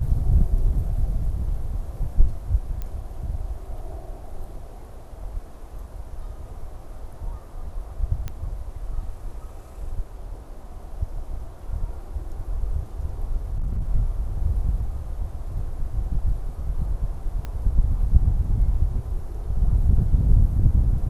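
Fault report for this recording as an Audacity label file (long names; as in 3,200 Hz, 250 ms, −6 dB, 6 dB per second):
2.820000	2.820000	click −19 dBFS
8.280000	8.280000	click −18 dBFS
13.520000	13.880000	clipping −21 dBFS
17.450000	17.450000	click −19 dBFS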